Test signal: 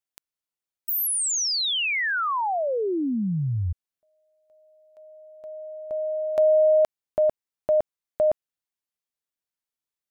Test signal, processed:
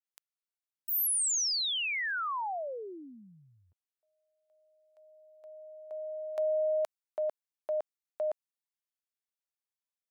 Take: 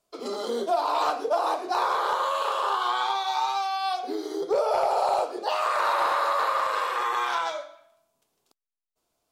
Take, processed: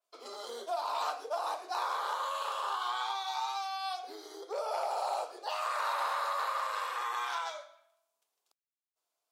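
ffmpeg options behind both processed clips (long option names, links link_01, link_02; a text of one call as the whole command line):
ffmpeg -i in.wav -af "highpass=640,adynamicequalizer=threshold=0.00891:dfrequency=4300:dqfactor=0.7:tfrequency=4300:tqfactor=0.7:attack=5:release=100:ratio=0.375:range=2:mode=boostabove:tftype=highshelf,volume=-8dB" out.wav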